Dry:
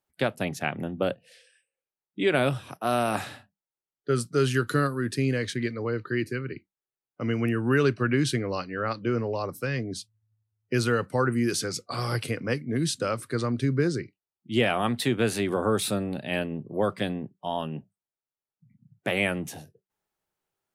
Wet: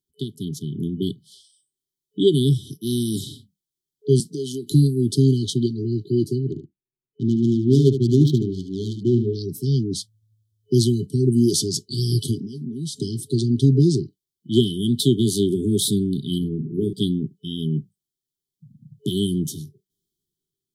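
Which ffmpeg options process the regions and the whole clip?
ffmpeg -i in.wav -filter_complex "[0:a]asettb=1/sr,asplit=3[link_01][link_02][link_03];[link_01]atrim=end=4.204[link_04];[link_02]atrim=start=4.2:end=4.72,asetpts=PTS-STARTPTS,afade=type=in:duration=0.004:curve=qsin,afade=type=out:start_time=0.516:duration=0.004:curve=qsin,acompressor=threshold=-29dB:ratio=8:attack=3.2:release=140:knee=1:detection=peak,highpass=frequency=180:width=0.5412,highpass=frequency=180:width=1.3066[link_05];[link_03]atrim=start=4.716[link_06];[link_04][link_05]acrossfade=duration=0.004:curve1=hsin:curve2=qsin[link_07];[link_07][link_06]acrossfade=duration=0.004:curve1=qsin:curve2=hsin,asettb=1/sr,asplit=3[link_08][link_09][link_10];[link_08]atrim=end=6.514[link_11];[link_09]atrim=start=6.51:end=9.35,asetpts=PTS-STARTPTS,afade=type=in:duration=0.004:curve=qsin,afade=type=out:start_time=2.836:duration=0.004:curve=qsin,adynamicsmooth=sensitivity=3:basefreq=900,aecho=1:1:74:0.335,atrim=end_sample=125244[link_12];[link_10]atrim=start=9.346[link_13];[link_11][link_12]acrossfade=duration=0.004:curve1=hsin:curve2=qsin[link_14];[link_14][link_13]acrossfade=duration=0.004:curve1=qsin:curve2=hsin,asettb=1/sr,asplit=3[link_15][link_16][link_17];[link_15]atrim=end=12.384[link_18];[link_16]atrim=start=12.38:end=13.01,asetpts=PTS-STARTPTS,afade=type=in:duration=0.004:curve=qsin,afade=type=out:start_time=0.626:duration=0.004:curve=qsin,aecho=1:1:4.6:0.45,atrim=end_sample=27783,acompressor=threshold=-35dB:ratio=16:attack=3.2:release=140:knee=1:detection=peak[link_19];[link_17]atrim=start=13.006[link_20];[link_18][link_19]acrossfade=duration=0.004:curve1=hsin:curve2=qsin[link_21];[link_21][link_20]acrossfade=duration=0.004:curve1=qsin:curve2=hsin,asettb=1/sr,asplit=3[link_22][link_23][link_24];[link_22]atrim=end=16.384[link_25];[link_23]atrim=start=16.38:end=16.93,asetpts=PTS-STARTPTS,afade=type=in:duration=0.004:curve=qsin,afade=type=out:start_time=0.546:duration=0.004:curve=qsin,equalizer=frequency=4000:width=0.33:gain=-11.5,bandreject=frequency=50:width_type=h:width=6,bandreject=frequency=100:width_type=h:width=6,bandreject=frequency=150:width_type=h:width=6,bandreject=frequency=200:width_type=h:width=6,bandreject=frequency=250:width_type=h:width=6,bandreject=frequency=300:width_type=h:width=6,bandreject=frequency=350:width_type=h:width=6,bandreject=frequency=400:width_type=h:width=6,asplit=2[link_26][link_27];[link_27]adelay=45,volume=-8.5dB[link_28];[link_26][link_28]amix=inputs=2:normalize=0,atrim=end_sample=24255[link_29];[link_24]atrim=start=16.926[link_30];[link_25][link_29]acrossfade=duration=0.004:curve1=hsin:curve2=qsin[link_31];[link_31][link_30]acrossfade=duration=0.004:curve1=qsin:curve2=hsin,afftfilt=real='re*(1-between(b*sr/4096,430,3000))':imag='im*(1-between(b*sr/4096,430,3000))':win_size=4096:overlap=0.75,equalizer=frequency=150:width_type=o:width=0.36:gain=6,dynaudnorm=framelen=130:gausssize=13:maxgain=8dB" out.wav

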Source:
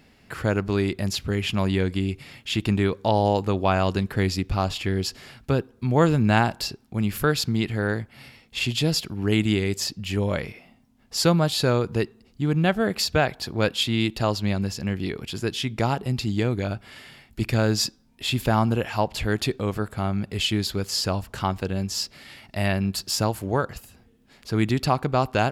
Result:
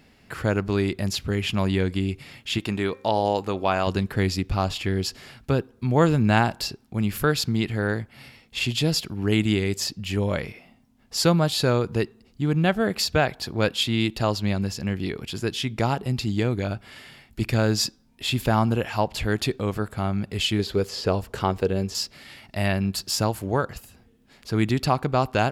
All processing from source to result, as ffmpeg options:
ffmpeg -i in.wav -filter_complex "[0:a]asettb=1/sr,asplit=3[link_01][link_02][link_03];[link_01]atrim=end=2.584[link_04];[link_02]atrim=start=2.58:end=3.87,asetpts=PTS-STARTPTS,afade=type=in:duration=0.004:curve=qsin,afade=type=out:start_time=1.286:duration=0.004:curve=qsin,lowshelf=frequency=180:gain=-11,bandreject=frequency=264.6:width_type=h:width=4,bandreject=frequency=529.2:width_type=h:width=4,bandreject=frequency=793.8:width_type=h:width=4,bandreject=frequency=1058.4:width_type=h:width=4,bandreject=frequency=1323:width_type=h:width=4,bandreject=frequency=1587.6:width_type=h:width=4,bandreject=frequency=1852.2:width_type=h:width=4,bandreject=frequency=2116.8:width_type=h:width=4,bandreject=frequency=2381.4:width_type=h:width=4,bandreject=frequency=2646:width_type=h:width=4[link_05];[link_03]atrim=start=3.866[link_06];[link_04][link_05]acrossfade=duration=0.004:curve1=hsin:curve2=qsin[link_07];[link_07][link_06]acrossfade=duration=0.004:curve1=qsin:curve2=hsin,asettb=1/sr,asplit=3[link_08][link_09][link_10];[link_08]atrim=end=20.594[link_11];[link_09]atrim=start=20.59:end=21.95,asetpts=PTS-STARTPTS,afade=type=in:duration=0.004:curve=qsin,afade=type=out:start_time=1.356:duration=0.004:curve=qsin,acrossover=split=4000[link_12][link_13];[link_13]acompressor=threshold=-40dB:ratio=4:attack=1:release=60[link_14];[link_12][link_14]amix=inputs=2:normalize=0,equalizer=frequency=440:width_type=o:width=0.62:gain=10[link_15];[link_10]atrim=start=21.946[link_16];[link_11][link_15]acrossfade=duration=0.004:curve1=hsin:curve2=qsin[link_17];[link_17][link_16]acrossfade=duration=0.004:curve1=qsin:curve2=hsin" out.wav

